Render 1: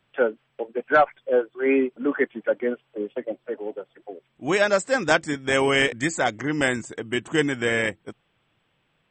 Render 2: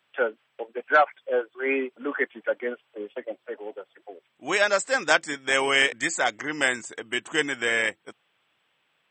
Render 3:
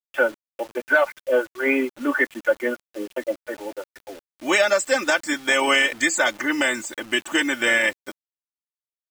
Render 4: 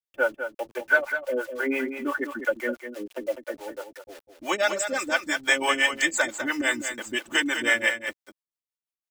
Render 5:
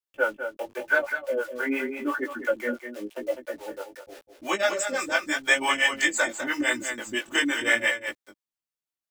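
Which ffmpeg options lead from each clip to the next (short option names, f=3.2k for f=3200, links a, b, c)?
-af "highpass=f=910:p=1,volume=2dB"
-af "aecho=1:1:3.4:0.84,alimiter=limit=-12.5dB:level=0:latency=1:release=150,acrusher=bits=7:mix=0:aa=0.000001,volume=4.5dB"
-filter_complex "[0:a]acrossover=split=410[a][b];[a]aeval=exprs='val(0)*(1-1/2+1/2*cos(2*PI*5.9*n/s))':c=same[c];[b]aeval=exprs='val(0)*(1-1/2-1/2*cos(2*PI*5.9*n/s))':c=same[d];[c][d]amix=inputs=2:normalize=0,aecho=1:1:201:0.376"
-af "flanger=delay=15.5:depth=6:speed=0.88,volume=2.5dB"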